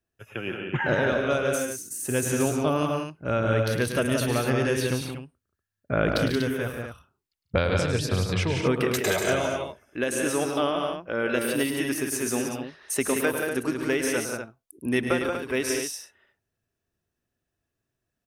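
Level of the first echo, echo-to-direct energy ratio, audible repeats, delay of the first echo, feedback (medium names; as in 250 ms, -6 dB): -10.0 dB, -1.5 dB, 4, 106 ms, no regular repeats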